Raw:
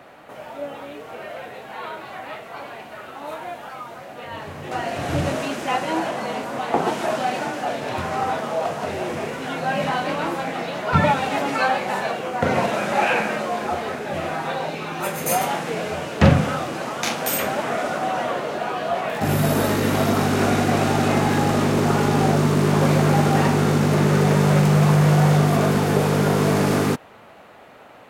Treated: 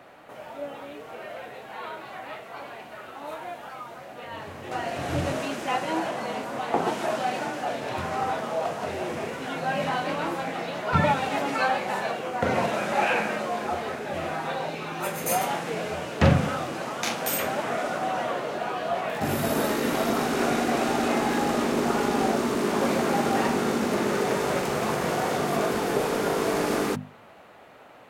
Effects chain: notches 50/100/150/200/250 Hz; gain -4 dB

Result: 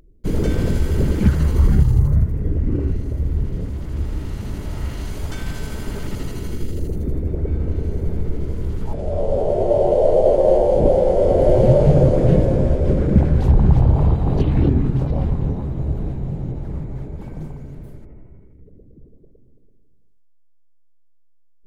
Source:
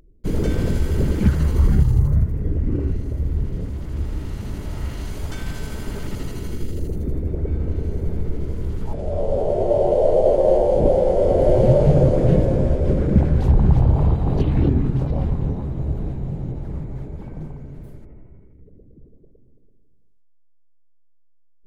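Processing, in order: 17.21–17.75 high shelf 4200 Hz +8.5 dB; gain +1.5 dB

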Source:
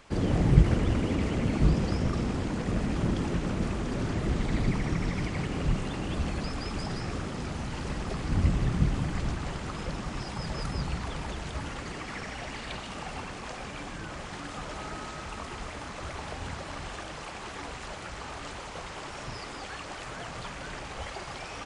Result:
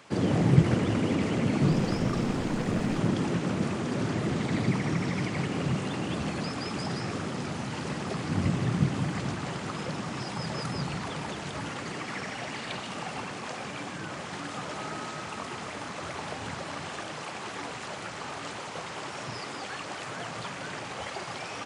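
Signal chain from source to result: HPF 110 Hz 24 dB/oct; 1.66–2.98 added noise brown -43 dBFS; gain +2.5 dB

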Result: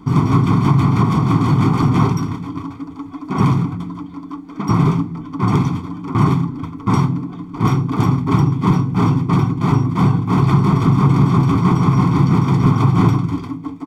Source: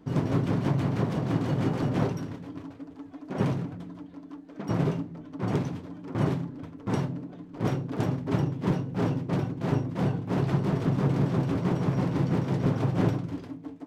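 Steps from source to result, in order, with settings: in parallel at +1 dB: limiter -21.5 dBFS, peak gain reduction 9 dB; on the sum: bell 1100 Hz +8 dB 0.25 oct; comb 0.9 ms, depth 100%; gain +3 dB

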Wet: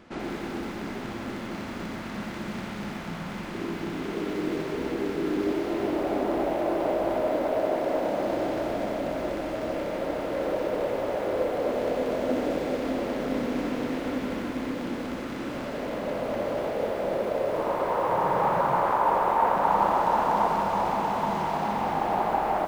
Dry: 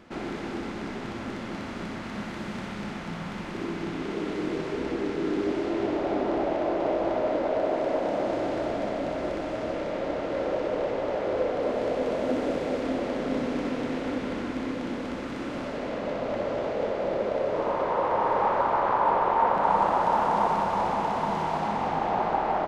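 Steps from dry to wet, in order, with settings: 18.08–18.82 band noise 120–200 Hz -40 dBFS; lo-fi delay 85 ms, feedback 35%, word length 7-bit, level -11 dB

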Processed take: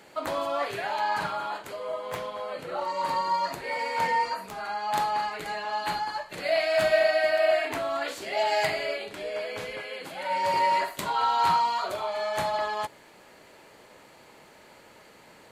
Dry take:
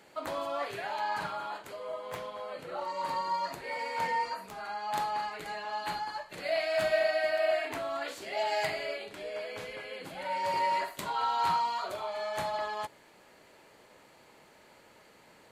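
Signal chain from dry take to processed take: 9.82–10.31 low shelf 230 Hz -10 dB; gain +5.5 dB

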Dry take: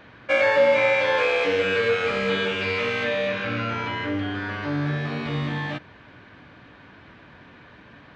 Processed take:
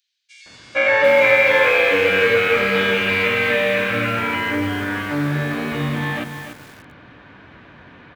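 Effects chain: AGC gain up to 4 dB; dynamic EQ 2100 Hz, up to +5 dB, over -32 dBFS, Q 1.6; bands offset in time highs, lows 0.46 s, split 4900 Hz; lo-fi delay 0.29 s, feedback 35%, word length 6-bit, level -7 dB

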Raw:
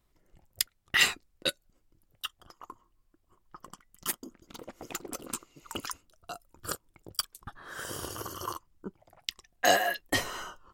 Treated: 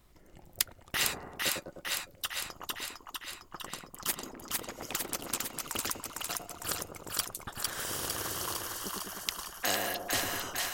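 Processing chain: split-band echo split 800 Hz, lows 0.102 s, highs 0.454 s, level -4 dB; spectral compressor 2:1

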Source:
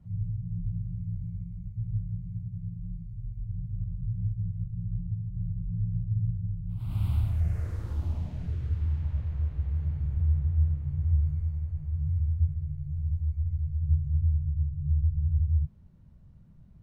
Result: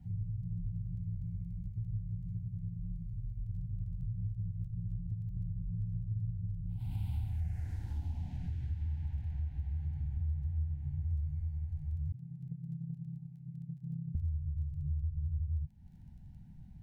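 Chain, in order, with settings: 12.12–14.15 chord vocoder major triad, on C3; band shelf 500 Hz -13.5 dB 1.1 oct; compressor 2.5:1, threshold -40 dBFS, peak gain reduction 13.5 dB; crackle 10/s -61 dBFS; Butterworth band-stop 1200 Hz, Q 1.9; small resonant body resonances 750/1200 Hz, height 10 dB, ringing for 25 ms; gain +2 dB

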